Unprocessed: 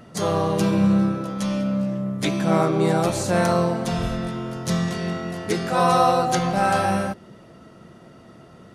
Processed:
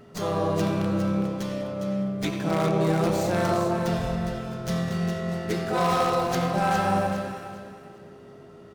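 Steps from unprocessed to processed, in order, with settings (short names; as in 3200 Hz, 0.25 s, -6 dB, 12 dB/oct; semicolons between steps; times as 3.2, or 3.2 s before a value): speakerphone echo 90 ms, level -8 dB; in parallel at -8 dB: wrapped overs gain 10.5 dB; on the sum: whine 410 Hz -43 dBFS; on a send: echo with dull and thin repeats by turns 0.204 s, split 1000 Hz, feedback 54%, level -2.5 dB; on the sum: downsampling 32000 Hz; running maximum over 3 samples; gain -8 dB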